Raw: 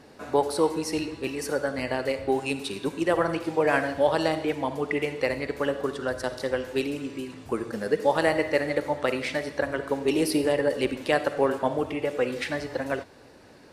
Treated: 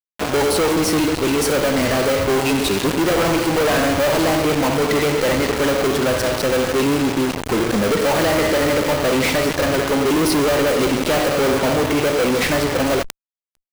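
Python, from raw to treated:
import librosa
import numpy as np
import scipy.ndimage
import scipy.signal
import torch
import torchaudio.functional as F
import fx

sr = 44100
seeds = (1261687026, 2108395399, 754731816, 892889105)

p1 = fx.sample_hold(x, sr, seeds[0], rate_hz=1800.0, jitter_pct=0)
p2 = x + (p1 * librosa.db_to_amplitude(-3.5))
p3 = fx.fuzz(p2, sr, gain_db=41.0, gate_db=-36.0)
p4 = fx.sustainer(p3, sr, db_per_s=110.0)
y = p4 * librosa.db_to_amplitude(-2.0)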